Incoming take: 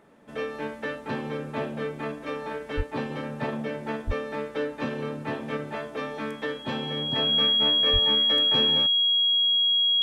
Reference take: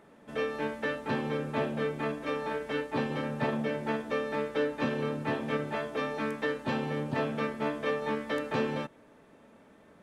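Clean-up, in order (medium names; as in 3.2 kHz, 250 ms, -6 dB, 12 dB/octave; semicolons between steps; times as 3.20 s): band-stop 3.3 kHz, Q 30; de-plosive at 2.76/4.06/7.92 s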